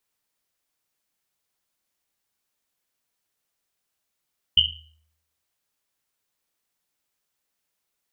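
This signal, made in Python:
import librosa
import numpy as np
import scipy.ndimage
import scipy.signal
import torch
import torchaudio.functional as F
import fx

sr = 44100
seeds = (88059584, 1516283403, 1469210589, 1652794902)

y = fx.risset_drum(sr, seeds[0], length_s=1.1, hz=78.0, decay_s=0.8, noise_hz=3000.0, noise_width_hz=260.0, noise_pct=80)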